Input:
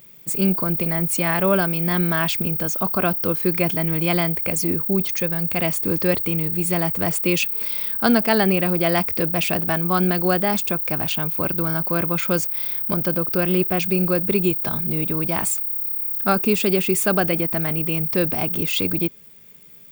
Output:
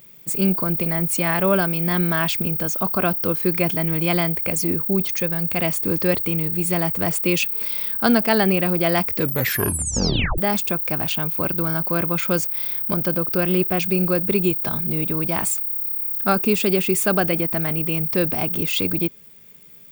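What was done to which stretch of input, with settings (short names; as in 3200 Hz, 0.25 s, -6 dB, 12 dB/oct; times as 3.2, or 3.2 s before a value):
9.14 tape stop 1.24 s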